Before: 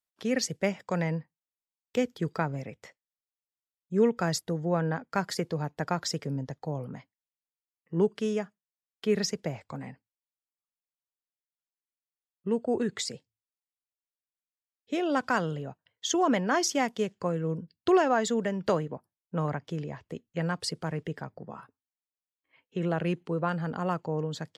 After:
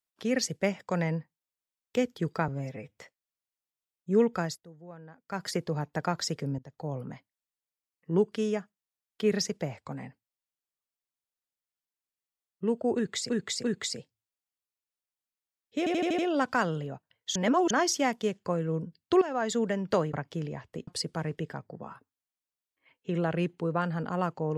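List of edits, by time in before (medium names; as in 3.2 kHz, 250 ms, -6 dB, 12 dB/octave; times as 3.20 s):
2.48–2.81 s: stretch 1.5×
4.18–5.34 s: dip -19.5 dB, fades 0.27 s
6.42–6.78 s: fade in, from -20.5 dB
12.79–13.13 s: loop, 3 plays
14.94 s: stutter 0.08 s, 6 plays
16.11–16.46 s: reverse
17.97–18.34 s: fade in, from -14.5 dB
18.89–19.50 s: delete
20.24–20.55 s: delete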